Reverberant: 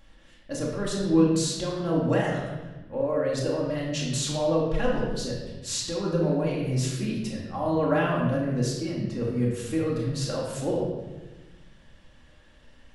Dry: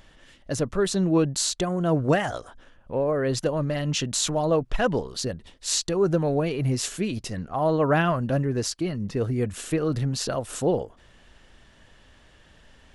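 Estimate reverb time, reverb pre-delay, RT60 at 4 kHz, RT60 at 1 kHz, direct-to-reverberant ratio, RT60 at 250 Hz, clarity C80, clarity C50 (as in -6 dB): 1.1 s, 4 ms, 0.95 s, 1.0 s, -4.0 dB, 1.7 s, 4.0 dB, 1.5 dB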